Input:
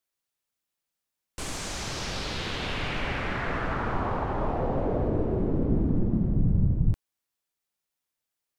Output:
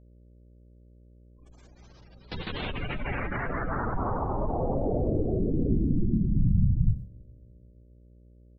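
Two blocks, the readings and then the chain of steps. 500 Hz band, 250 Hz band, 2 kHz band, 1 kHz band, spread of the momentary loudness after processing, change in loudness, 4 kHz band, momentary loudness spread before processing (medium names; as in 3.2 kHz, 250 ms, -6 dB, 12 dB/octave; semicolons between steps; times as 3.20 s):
-1.0 dB, -0.5 dB, -4.0 dB, -2.0 dB, 9 LU, 0.0 dB, -9.0 dB, 8 LU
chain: spectral gate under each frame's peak -15 dB strong; echo from a far wall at 57 m, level -16 dB; gate with hold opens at -24 dBFS; mains buzz 60 Hz, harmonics 10, -54 dBFS -7 dB/octave; spring tank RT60 2.6 s, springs 44 ms, chirp 35 ms, DRR 19.5 dB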